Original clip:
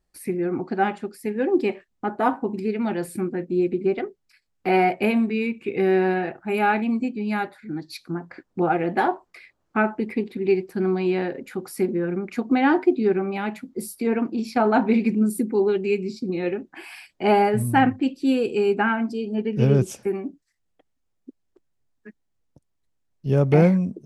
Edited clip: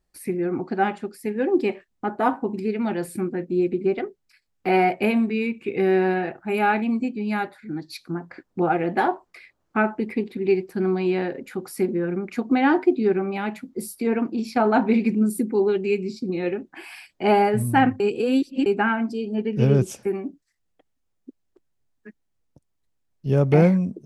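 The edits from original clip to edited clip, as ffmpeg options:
-filter_complex "[0:a]asplit=3[a][b][c];[a]atrim=end=18.002[d];[b]atrim=start=17.998:end=18.662,asetpts=PTS-STARTPTS,areverse[e];[c]atrim=start=18.658[f];[d][e]acrossfade=d=0.004:c1=hsin:c2=hsin[g];[g][f]acrossfade=d=0.004:c1=hsin:c2=hsin"

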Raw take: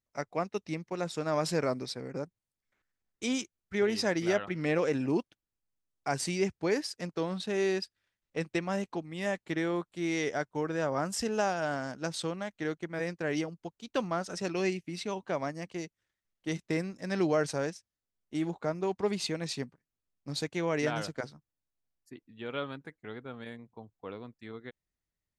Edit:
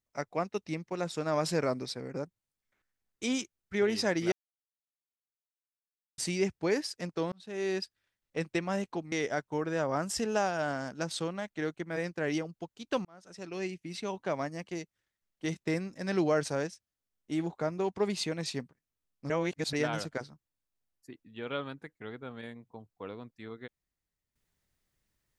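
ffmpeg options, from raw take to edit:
-filter_complex "[0:a]asplit=8[a][b][c][d][e][f][g][h];[a]atrim=end=4.32,asetpts=PTS-STARTPTS,afade=t=out:st=4.316:d=0.004:c=hsin[i];[b]atrim=start=4.32:end=6.18,asetpts=PTS-STARTPTS,volume=0[j];[c]atrim=start=6.18:end=7.32,asetpts=PTS-STARTPTS,afade=t=in:d=0.004:c=hsin,afade=t=out:st=1.136:d=0.004:c=hsin[k];[d]atrim=start=7.32:end=9.122,asetpts=PTS-STARTPTS,afade=t=in:d=0.51[l];[e]atrim=start=10.148:end=14.08,asetpts=PTS-STARTPTS,afade=t=out:st=3.928:d=0.004:c=hsin[m];[f]atrim=start=14.08:end=20.332,asetpts=PTS-STARTPTS,afade=t=in:d=1.12[n];[g]atrim=start=20.328:end=20.762,asetpts=PTS-STARTPTS,areverse[o];[h]atrim=start=20.758[p];[i][j][k][l]concat=n=4:v=0:a=1[q];[m][n]concat=n=2:v=0:a=1[r];[q][r]acrossfade=d=0.004:c1=hsin:c2=hsin[s];[s][o]acrossfade=d=0.004:c1=hsin:c2=hsin[t];[t][p]acrossfade=d=0.004:c1=hsin:c2=hsin"

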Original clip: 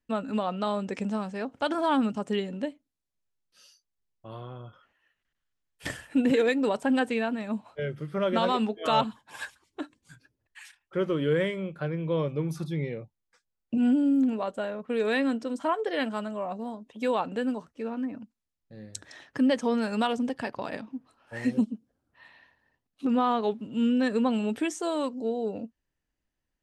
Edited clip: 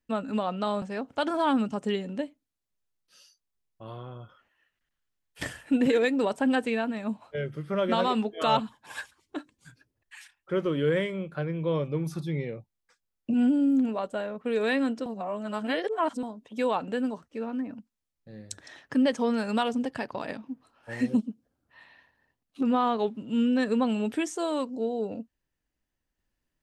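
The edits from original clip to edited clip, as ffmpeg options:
-filter_complex "[0:a]asplit=4[a][b][c][d];[a]atrim=end=0.822[e];[b]atrim=start=1.258:end=15.502[f];[c]atrim=start=15.498:end=16.672,asetpts=PTS-STARTPTS,areverse[g];[d]atrim=start=16.668[h];[e][f]acrossfade=d=0.004:c1=hsin:c2=hsin[i];[i][g]acrossfade=d=0.004:c1=hsin:c2=hsin[j];[j][h]acrossfade=d=0.004:c1=hsin:c2=hsin"

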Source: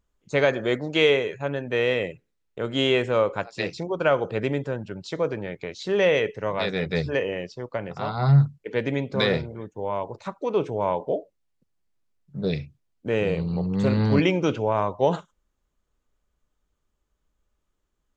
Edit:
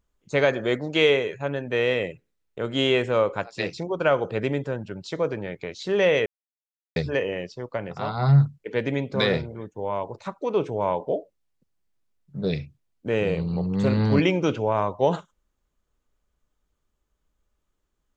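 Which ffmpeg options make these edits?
-filter_complex "[0:a]asplit=3[a][b][c];[a]atrim=end=6.26,asetpts=PTS-STARTPTS,afade=t=out:st=6.256:d=0.004:c=hsin[d];[b]atrim=start=6.26:end=6.96,asetpts=PTS-STARTPTS,volume=0[e];[c]atrim=start=6.96,asetpts=PTS-STARTPTS,afade=t=in:d=0.004:c=hsin[f];[d][e][f]concat=n=3:v=0:a=1"

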